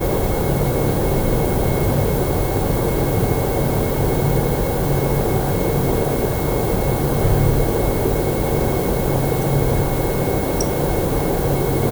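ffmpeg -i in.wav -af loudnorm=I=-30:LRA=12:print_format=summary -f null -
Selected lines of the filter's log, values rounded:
Input Integrated:    -19.1 LUFS
Input True Peak:      -4.0 dBTP
Input LRA:             0.5 LU
Input Threshold:     -29.1 LUFS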